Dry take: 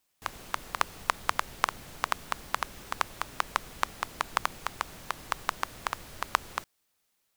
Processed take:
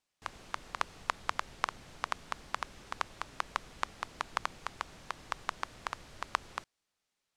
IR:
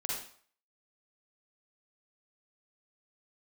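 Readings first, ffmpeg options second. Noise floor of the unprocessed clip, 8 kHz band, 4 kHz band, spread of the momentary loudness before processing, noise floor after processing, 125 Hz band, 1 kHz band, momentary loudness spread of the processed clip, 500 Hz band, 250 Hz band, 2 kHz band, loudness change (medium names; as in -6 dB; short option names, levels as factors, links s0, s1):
-76 dBFS, -8.5 dB, -6.0 dB, 7 LU, under -85 dBFS, -5.5 dB, -5.5 dB, 7 LU, -5.5 dB, -5.5 dB, -5.5 dB, -5.5 dB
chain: -af "lowpass=7300,volume=0.531"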